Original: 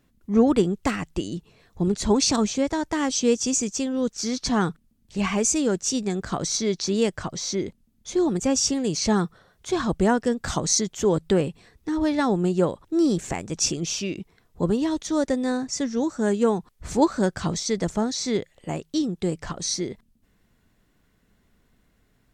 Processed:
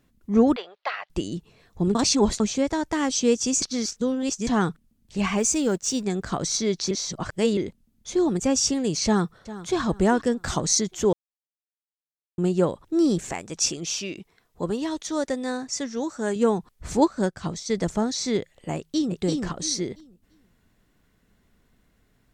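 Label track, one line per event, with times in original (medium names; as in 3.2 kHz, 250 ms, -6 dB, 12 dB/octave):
0.560000	1.100000	elliptic band-pass 600–4300 Hz
1.950000	2.400000	reverse
3.620000	4.470000	reverse
5.390000	6.030000	companding laws mixed up coded by A
6.910000	7.570000	reverse
9.050000	9.810000	echo throw 400 ms, feedback 35%, level -15.5 dB
11.130000	12.380000	mute
13.300000	16.360000	bass shelf 310 Hz -9 dB
17.040000	17.700000	upward expansion, over -37 dBFS
18.760000	19.170000	echo throw 340 ms, feedback 25%, level -2.5 dB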